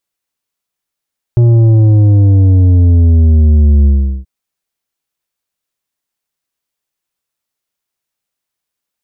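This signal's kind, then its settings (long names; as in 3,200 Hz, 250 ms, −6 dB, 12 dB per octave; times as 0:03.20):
bass drop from 120 Hz, over 2.88 s, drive 8 dB, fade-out 0.39 s, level −5 dB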